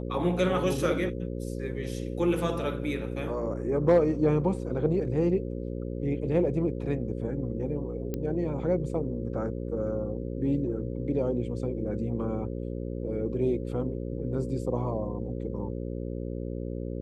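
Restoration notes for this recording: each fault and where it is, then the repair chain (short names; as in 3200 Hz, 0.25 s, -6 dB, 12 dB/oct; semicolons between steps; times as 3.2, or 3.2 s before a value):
buzz 60 Hz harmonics 9 -34 dBFS
8.14 pop -19 dBFS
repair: de-click; de-hum 60 Hz, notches 9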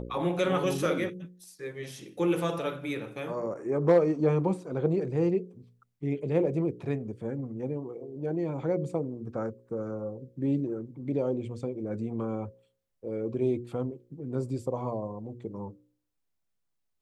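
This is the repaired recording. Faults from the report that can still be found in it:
none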